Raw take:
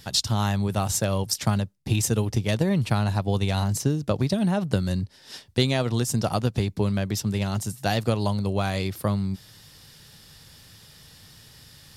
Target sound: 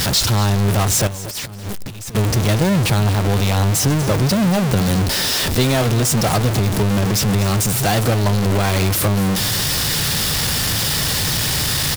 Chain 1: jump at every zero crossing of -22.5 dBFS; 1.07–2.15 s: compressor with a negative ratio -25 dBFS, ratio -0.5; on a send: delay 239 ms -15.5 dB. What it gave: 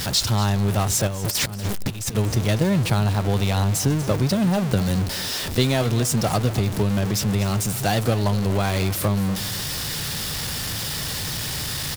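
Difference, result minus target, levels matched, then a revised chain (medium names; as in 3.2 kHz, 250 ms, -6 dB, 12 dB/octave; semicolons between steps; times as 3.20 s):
jump at every zero crossing: distortion -5 dB
jump at every zero crossing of -13.5 dBFS; 1.07–2.15 s: compressor with a negative ratio -25 dBFS, ratio -0.5; on a send: delay 239 ms -15.5 dB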